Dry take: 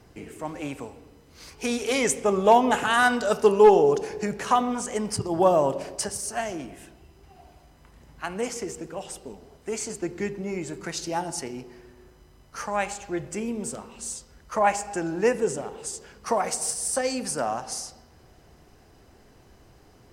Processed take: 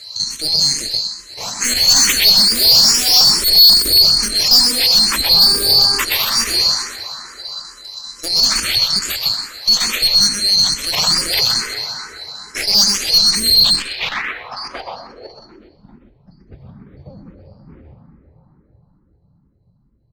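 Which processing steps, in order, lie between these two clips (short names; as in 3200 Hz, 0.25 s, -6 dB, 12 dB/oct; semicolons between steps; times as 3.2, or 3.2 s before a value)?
band-swap scrambler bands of 4000 Hz; chopper 5.1 Hz, depth 65%, duty 85%; plate-style reverb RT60 4.3 s, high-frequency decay 0.3×, pre-delay 90 ms, DRR 4.5 dB; low-pass sweep 8900 Hz -> 150 Hz, 12.99–16.12; echo 0.126 s -5 dB; tube stage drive 24 dB, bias 0.55; 5.35–5.99 buzz 400 Hz, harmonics 4, -46 dBFS -4 dB/oct; maximiser +24.5 dB; endless phaser +2.3 Hz; gain -2 dB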